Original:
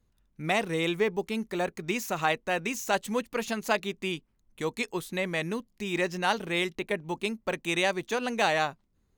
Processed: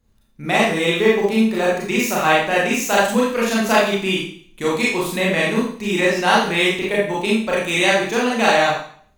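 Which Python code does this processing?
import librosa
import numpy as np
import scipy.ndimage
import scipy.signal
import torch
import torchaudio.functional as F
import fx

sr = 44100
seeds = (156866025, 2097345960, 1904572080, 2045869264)

p1 = fx.rider(x, sr, range_db=10, speed_s=2.0)
p2 = x + F.gain(torch.from_numpy(p1), -0.5).numpy()
p3 = fx.rev_schroeder(p2, sr, rt60_s=0.53, comb_ms=28, drr_db=-6.0)
y = F.gain(torch.from_numpy(p3), -1.0).numpy()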